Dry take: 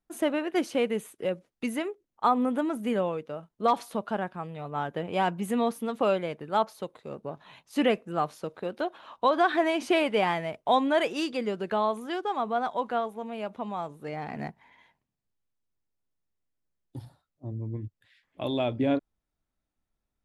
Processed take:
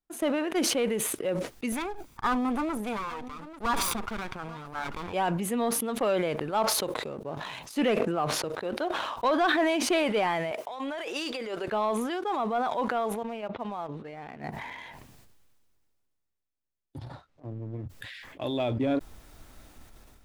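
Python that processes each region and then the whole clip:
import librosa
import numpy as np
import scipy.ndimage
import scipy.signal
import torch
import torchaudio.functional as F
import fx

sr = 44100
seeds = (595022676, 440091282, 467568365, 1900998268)

y = fx.chain(x, sr, fx.lower_of_two(delay_ms=0.83),
    fx.echo_single(ms=838, db=-22.0), at=(1.72, 5.13))
y = fx.chain(y, sr, fx.high_shelf(hz=5000.0, db=-11.5),
    fx.band_squash(depth_pct=40), at=(8.0, 8.44))
y = fx.chain(y, sr, fx.highpass(hz=450.0, slope=12),
    fx.over_compress(threshold_db=-36.0, ratio=-1.0), at=(10.51, 11.68))
y = fx.chain(y, sr, fx.lowpass(hz=4100.0, slope=24),
    fx.upward_expand(threshold_db=-42.0, expansion=2.5), at=(13.23, 14.44))
y = fx.chain(y, sr, fx.lowpass(hz=5100.0, slope=12),
    fx.power_curve(exponent=1.4),
    fx.band_squash(depth_pct=40), at=(16.98, 17.86))
y = fx.peak_eq(y, sr, hz=180.0, db=-5.0, octaves=0.5)
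y = fx.leveller(y, sr, passes=1)
y = fx.sustainer(y, sr, db_per_s=25.0)
y = y * librosa.db_to_amplitude(-4.5)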